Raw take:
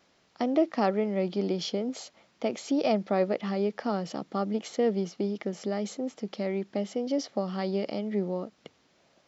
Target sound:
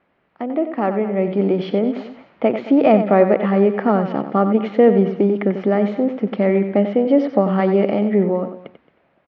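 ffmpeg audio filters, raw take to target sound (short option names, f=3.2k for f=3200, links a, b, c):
-filter_complex "[0:a]asplit=2[a][b];[b]aecho=0:1:221:0.141[c];[a][c]amix=inputs=2:normalize=0,dynaudnorm=f=170:g=13:m=12.5dB,lowpass=f=2.4k:w=0.5412,lowpass=f=2.4k:w=1.3066,asplit=2[d][e];[e]aecho=0:1:92:0.335[f];[d][f]amix=inputs=2:normalize=0,volume=2dB"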